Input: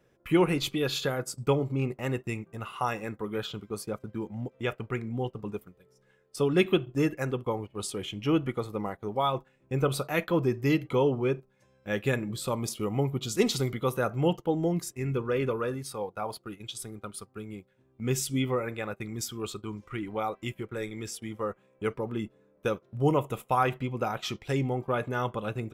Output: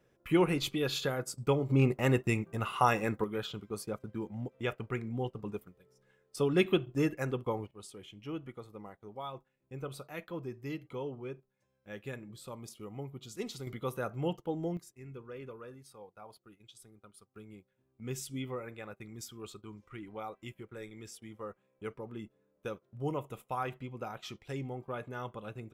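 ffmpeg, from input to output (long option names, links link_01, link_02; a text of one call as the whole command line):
ffmpeg -i in.wav -af "asetnsamples=nb_out_samples=441:pad=0,asendcmd='1.69 volume volume 3.5dB;3.24 volume volume -3.5dB;7.71 volume volume -14.5dB;13.67 volume volume -8dB;14.77 volume volume -17dB;17.36 volume volume -10.5dB',volume=-3.5dB" out.wav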